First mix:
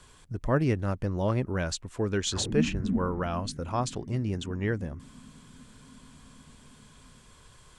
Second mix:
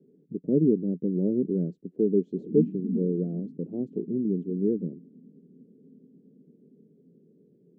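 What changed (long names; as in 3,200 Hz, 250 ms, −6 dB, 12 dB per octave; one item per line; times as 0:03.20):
speech +7.5 dB
master: add elliptic band-pass filter 170–430 Hz, stop band 50 dB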